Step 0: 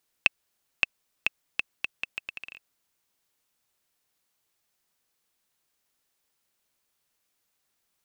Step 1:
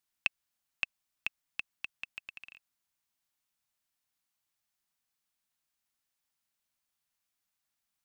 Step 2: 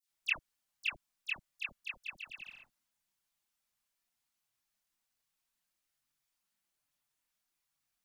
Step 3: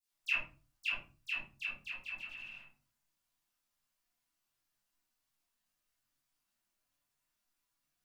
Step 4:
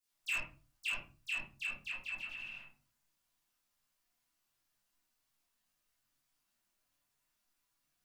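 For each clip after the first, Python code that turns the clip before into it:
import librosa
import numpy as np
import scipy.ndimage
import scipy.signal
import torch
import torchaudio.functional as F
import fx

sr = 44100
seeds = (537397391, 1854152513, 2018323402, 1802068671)

y1 = fx.peak_eq(x, sr, hz=440.0, db=-12.5, octaves=0.57)
y1 = y1 * librosa.db_to_amplitude(-8.0)
y2 = fx.dispersion(y1, sr, late='lows', ms=98.0, hz=1700.0)
y2 = fx.chorus_voices(y2, sr, voices=6, hz=0.3, base_ms=25, depth_ms=4.9, mix_pct=60)
y2 = y2 * librosa.db_to_amplitude(3.0)
y3 = fx.room_shoebox(y2, sr, seeds[0], volume_m3=200.0, walls='furnished', distance_m=3.1)
y3 = y3 * librosa.db_to_amplitude(-5.5)
y4 = 10.0 ** (-33.5 / 20.0) * np.tanh(y3 / 10.0 ** (-33.5 / 20.0))
y4 = y4 * librosa.db_to_amplitude(2.5)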